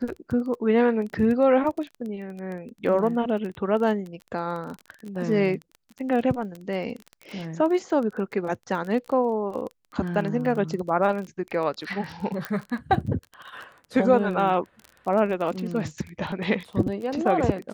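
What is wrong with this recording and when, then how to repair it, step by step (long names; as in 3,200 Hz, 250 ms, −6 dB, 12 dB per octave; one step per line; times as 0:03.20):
surface crackle 21 per second −31 dBFS
0:12.45: click −14 dBFS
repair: click removal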